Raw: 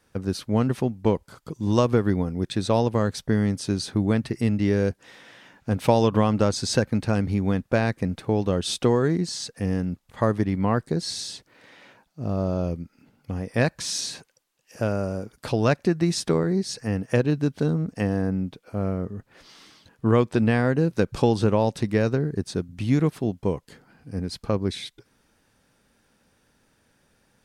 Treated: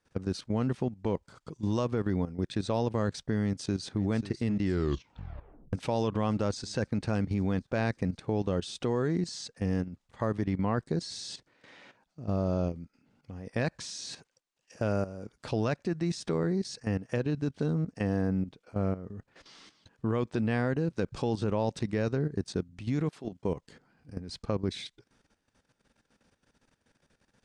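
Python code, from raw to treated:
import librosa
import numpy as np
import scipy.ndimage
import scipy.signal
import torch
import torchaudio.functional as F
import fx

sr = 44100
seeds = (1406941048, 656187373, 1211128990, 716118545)

y = fx.echo_throw(x, sr, start_s=3.42, length_s=0.61, ms=540, feedback_pct=70, wet_db=-13.0)
y = fx.highpass(y, sr, hz=fx.line((23.08, 500.0), (23.48, 120.0)), slope=6, at=(23.08, 23.48), fade=0.02)
y = fx.edit(y, sr, fx.tape_stop(start_s=4.61, length_s=1.12), tone=tone)
y = scipy.signal.sosfilt(scipy.signal.butter(4, 8500.0, 'lowpass', fs=sr, output='sos'), y)
y = fx.level_steps(y, sr, step_db=13)
y = F.gain(torch.from_numpy(y), -2.0).numpy()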